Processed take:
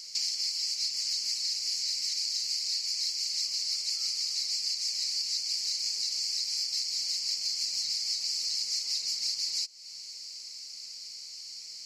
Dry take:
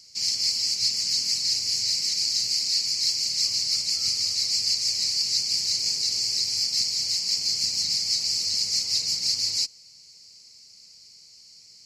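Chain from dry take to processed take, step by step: LPF 1800 Hz 6 dB/oct; tilt +4.5 dB/oct; compressor 6:1, threshold -36 dBFS, peak gain reduction 16.5 dB; gain +6 dB

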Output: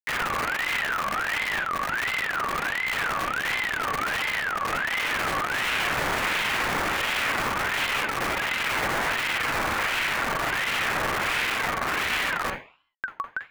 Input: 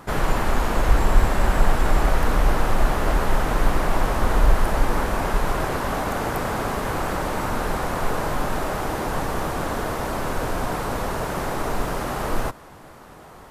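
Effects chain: tracing distortion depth 0.19 ms; compressor 1.5:1, threshold -28 dBFS, peak gain reduction 7.5 dB; Schmitt trigger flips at -33 dBFS; on a send at -2.5 dB: reverb RT60 0.45 s, pre-delay 42 ms; on the sum: ring modulator with a swept carrier 1600 Hz, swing 30%, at 1.4 Hz

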